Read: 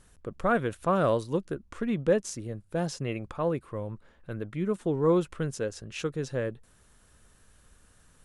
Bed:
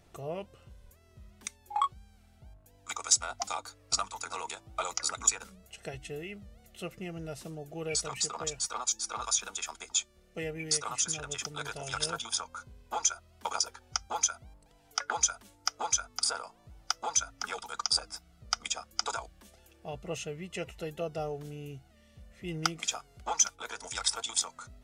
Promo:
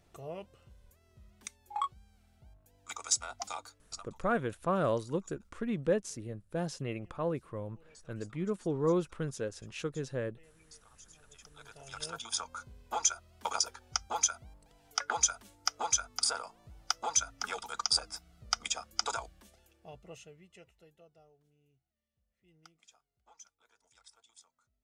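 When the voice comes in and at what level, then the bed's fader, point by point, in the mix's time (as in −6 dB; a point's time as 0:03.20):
3.80 s, −5.0 dB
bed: 0:03.63 −5 dB
0:04.33 −27 dB
0:11.01 −27 dB
0:12.45 −0.5 dB
0:19.25 −0.5 dB
0:21.36 −29.5 dB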